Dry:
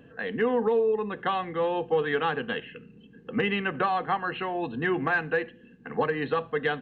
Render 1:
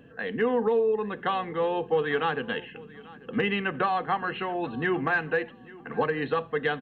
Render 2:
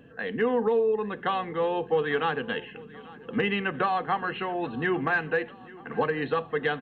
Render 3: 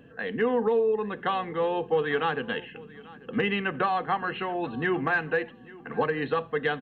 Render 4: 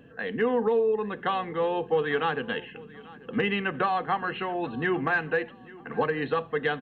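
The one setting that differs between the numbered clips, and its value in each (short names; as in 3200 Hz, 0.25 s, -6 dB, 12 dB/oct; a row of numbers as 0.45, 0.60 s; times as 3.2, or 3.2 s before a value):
feedback echo, feedback: 23, 61, 16, 35%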